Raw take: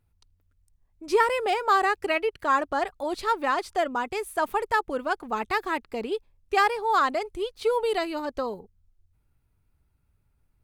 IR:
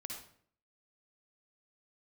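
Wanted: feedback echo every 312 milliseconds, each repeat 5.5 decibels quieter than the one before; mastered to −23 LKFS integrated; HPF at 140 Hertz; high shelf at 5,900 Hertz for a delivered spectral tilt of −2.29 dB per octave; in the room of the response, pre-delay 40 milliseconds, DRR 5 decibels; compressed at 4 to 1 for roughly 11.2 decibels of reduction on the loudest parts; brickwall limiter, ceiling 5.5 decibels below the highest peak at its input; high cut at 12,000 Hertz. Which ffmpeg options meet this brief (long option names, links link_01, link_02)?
-filter_complex "[0:a]highpass=140,lowpass=12000,highshelf=frequency=5900:gain=6,acompressor=threshold=-30dB:ratio=4,alimiter=level_in=0.5dB:limit=-24dB:level=0:latency=1,volume=-0.5dB,aecho=1:1:312|624|936|1248|1560|1872|2184:0.531|0.281|0.149|0.079|0.0419|0.0222|0.0118,asplit=2[link_01][link_02];[1:a]atrim=start_sample=2205,adelay=40[link_03];[link_02][link_03]afir=irnorm=-1:irlink=0,volume=-2.5dB[link_04];[link_01][link_04]amix=inputs=2:normalize=0,volume=9dB"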